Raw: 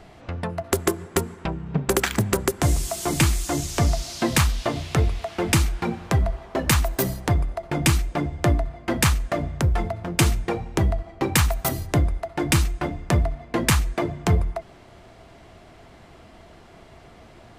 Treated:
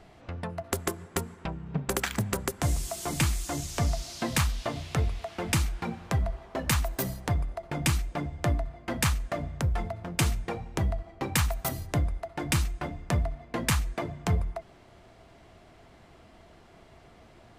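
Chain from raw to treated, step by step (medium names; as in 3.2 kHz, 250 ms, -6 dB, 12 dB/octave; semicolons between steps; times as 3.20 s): dynamic bell 360 Hz, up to -6 dB, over -39 dBFS, Q 3.2; trim -6.5 dB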